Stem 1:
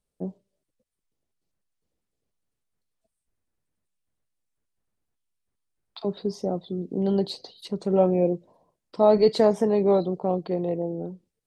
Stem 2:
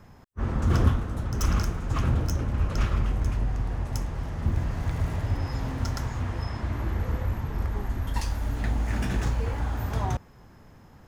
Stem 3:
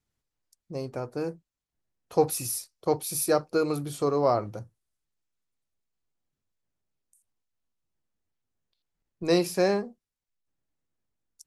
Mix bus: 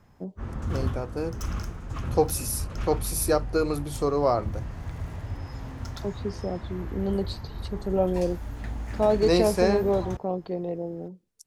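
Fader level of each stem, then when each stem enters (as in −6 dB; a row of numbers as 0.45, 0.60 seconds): −4.0, −7.0, +0.5 decibels; 0.00, 0.00, 0.00 seconds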